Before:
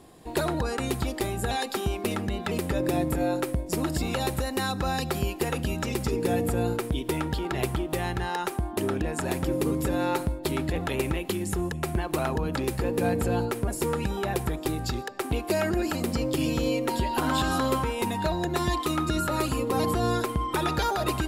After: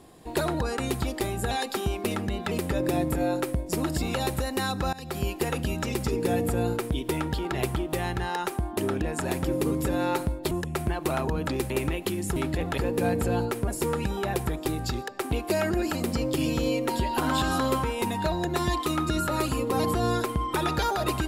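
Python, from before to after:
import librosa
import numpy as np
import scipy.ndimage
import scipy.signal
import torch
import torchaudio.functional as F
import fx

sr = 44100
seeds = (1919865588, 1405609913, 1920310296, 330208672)

y = fx.edit(x, sr, fx.fade_in_from(start_s=4.93, length_s=0.34, floor_db=-20.5),
    fx.swap(start_s=10.51, length_s=0.42, other_s=11.59, other_length_s=1.19), tone=tone)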